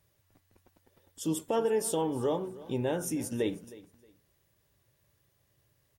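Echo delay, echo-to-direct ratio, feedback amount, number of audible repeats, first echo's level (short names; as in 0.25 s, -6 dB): 0.314 s, -19.0 dB, 23%, 2, -19.0 dB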